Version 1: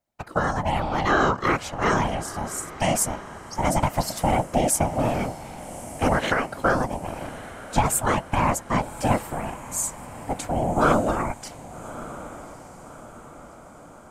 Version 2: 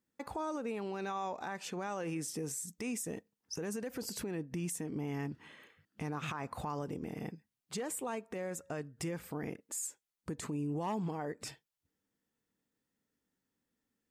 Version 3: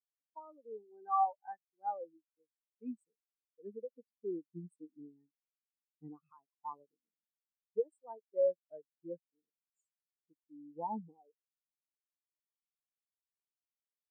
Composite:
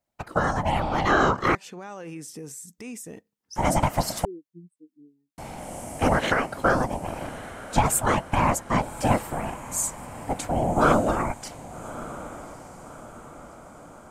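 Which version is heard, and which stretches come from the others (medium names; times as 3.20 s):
1
1.55–3.56 s: from 2
4.25–5.38 s: from 3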